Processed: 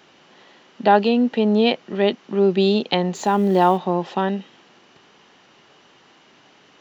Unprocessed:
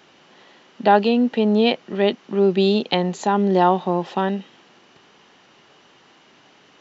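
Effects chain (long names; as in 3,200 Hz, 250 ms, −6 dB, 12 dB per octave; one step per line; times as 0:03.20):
0:03.15–0:03.78: mu-law and A-law mismatch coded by mu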